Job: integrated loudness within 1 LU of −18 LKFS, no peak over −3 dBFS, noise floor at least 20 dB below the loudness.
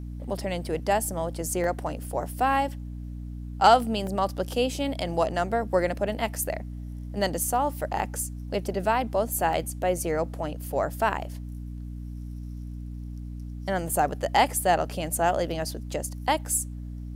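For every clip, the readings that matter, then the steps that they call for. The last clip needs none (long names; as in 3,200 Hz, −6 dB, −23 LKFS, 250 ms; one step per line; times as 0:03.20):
number of dropouts 3; longest dropout 1.3 ms; mains hum 60 Hz; hum harmonics up to 300 Hz; level of the hum −34 dBFS; integrated loudness −27.0 LKFS; sample peak −7.0 dBFS; target loudness −18.0 LKFS
→ repair the gap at 0:01.64/0:04.07/0:09.53, 1.3 ms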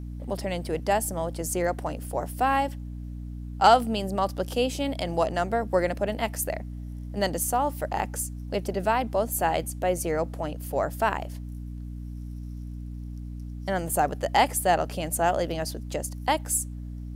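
number of dropouts 0; mains hum 60 Hz; hum harmonics up to 300 Hz; level of the hum −34 dBFS
→ hum removal 60 Hz, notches 5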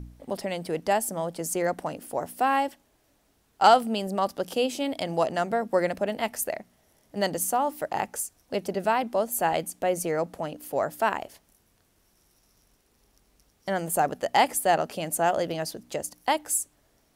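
mains hum none found; integrated loudness −27.0 LKFS; sample peak −7.0 dBFS; target loudness −18.0 LKFS
→ level +9 dB
brickwall limiter −3 dBFS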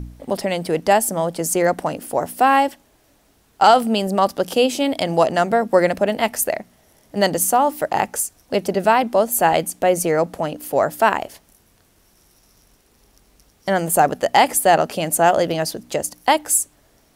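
integrated loudness −18.5 LKFS; sample peak −3.0 dBFS; background noise floor −58 dBFS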